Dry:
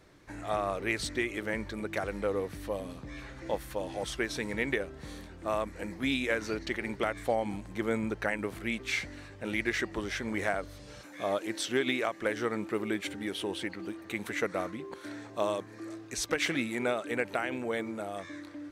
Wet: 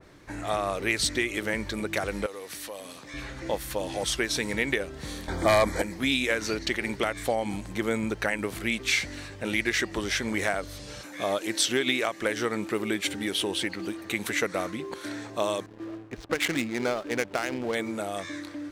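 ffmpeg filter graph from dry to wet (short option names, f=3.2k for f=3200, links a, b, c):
-filter_complex "[0:a]asettb=1/sr,asplit=3[a][b][c];[a]atrim=end=2.264[d];[b]atrim=start=2.26:end=3.14,asetpts=PTS-STARTPTS,afade=t=in:d=0.004:c=qsin,afade=t=out:st=0.876:d=0.004:c=qsin,equalizer=f=9.2k:t=o:w=3:g=6.5,acompressor=threshold=-40dB:ratio=2.5:attack=3.2:release=140:knee=1:detection=peak,highpass=f=660:p=1[e];[c]atrim=start=3.136[f];[d][e]acrossfade=d=0.004:c1=hsin:c2=qsin[g];[g][f]acrossfade=d=0.004:c1=qsin:c2=hsin,asettb=1/sr,asplit=3[h][i][j];[h]atrim=end=5.284[k];[i]atrim=start=5.28:end=5.82,asetpts=PTS-STARTPTS,afade=t=in:d=0.004:c=qsin,afade=t=out:st=0.536:d=0.004:c=qsin,equalizer=f=800:t=o:w=1.3:g=6,aeval=exprs='0.178*sin(PI/2*2.24*val(0)/0.178)':c=same,asuperstop=centerf=2700:order=8:qfactor=4.8[l];[j]atrim=start=5.816[m];[k][l]acrossfade=d=0.004:c1=hsin:c2=qsin[n];[n][m]acrossfade=d=0.004:c1=qsin:c2=hsin,asettb=1/sr,asplit=3[o][p][q];[o]atrim=end=15.664[r];[p]atrim=start=15.66:end=17.75,asetpts=PTS-STARTPTS,afade=t=in:d=0.004:c=qsin,afade=t=out:st=2.086:d=0.004:c=qsin,highshelf=f=3.4k:g=-7.5,adynamicsmooth=sensitivity=8:basefreq=570,aeval=exprs='sgn(val(0))*max(abs(val(0))-0.00158,0)':c=same[s];[q]atrim=start=17.746[t];[r][s]acrossfade=d=0.004:c1=hsin:c2=qsin[u];[u][t]acrossfade=d=0.004:c1=qsin:c2=hsin,acompressor=threshold=-35dB:ratio=1.5,adynamicequalizer=threshold=0.00316:dfrequency=2500:dqfactor=0.7:tfrequency=2500:tqfactor=0.7:attack=5:release=100:ratio=0.375:range=3.5:mode=boostabove:tftype=highshelf,volume=6dB"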